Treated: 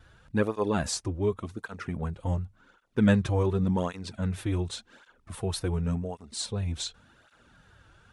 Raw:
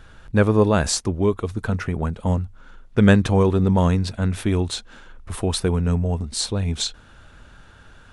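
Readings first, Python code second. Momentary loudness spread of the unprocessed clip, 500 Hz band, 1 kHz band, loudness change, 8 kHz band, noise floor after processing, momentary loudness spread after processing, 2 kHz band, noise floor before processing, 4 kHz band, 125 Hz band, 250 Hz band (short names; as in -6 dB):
10 LU, -9.0 dB, -9.0 dB, -8.5 dB, -9.0 dB, -64 dBFS, 12 LU, -9.0 dB, -48 dBFS, -9.0 dB, -9.0 dB, -8.0 dB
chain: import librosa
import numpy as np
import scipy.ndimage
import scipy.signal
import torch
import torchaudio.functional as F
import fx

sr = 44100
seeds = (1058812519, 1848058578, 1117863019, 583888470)

y = fx.wow_flutter(x, sr, seeds[0], rate_hz=2.1, depth_cents=32.0)
y = fx.flanger_cancel(y, sr, hz=0.89, depth_ms=5.1)
y = y * librosa.db_to_amplitude(-6.0)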